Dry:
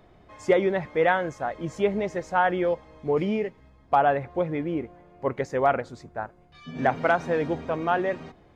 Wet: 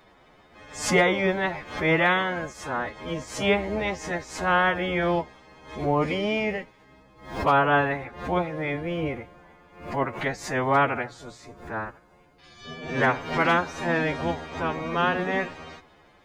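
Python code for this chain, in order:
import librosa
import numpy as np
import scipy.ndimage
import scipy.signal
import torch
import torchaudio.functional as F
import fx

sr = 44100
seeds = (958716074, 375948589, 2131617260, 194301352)

y = fx.spec_clip(x, sr, under_db=17)
y = fx.stretch_vocoder(y, sr, factor=1.9)
y = fx.hum_notches(y, sr, base_hz=60, count=2)
y = fx.pre_swell(y, sr, db_per_s=110.0)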